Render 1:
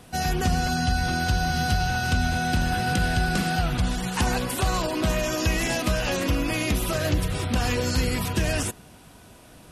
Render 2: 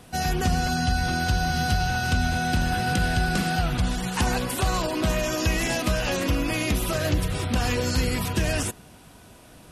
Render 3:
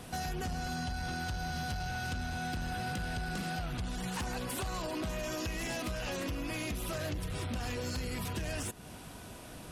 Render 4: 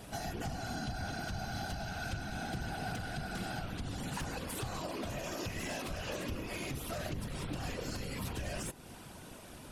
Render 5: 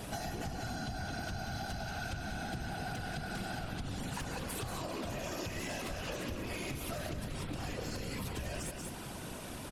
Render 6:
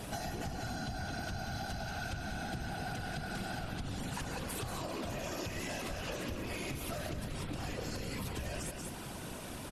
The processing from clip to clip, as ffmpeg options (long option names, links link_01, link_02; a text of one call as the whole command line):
ffmpeg -i in.wav -af anull out.wav
ffmpeg -i in.wav -af "acompressor=threshold=-35dB:ratio=4,asoftclip=type=tanh:threshold=-31.5dB,volume=1.5dB" out.wav
ffmpeg -i in.wav -af "afftfilt=real='hypot(re,im)*cos(2*PI*random(0))':imag='hypot(re,im)*sin(2*PI*random(1))':win_size=512:overlap=0.75,volume=3.5dB" out.wav
ffmpeg -i in.wav -af "aecho=1:1:186:0.398,acompressor=threshold=-43dB:ratio=4,volume=6dB" out.wav
ffmpeg -i in.wav -af "aresample=32000,aresample=44100" out.wav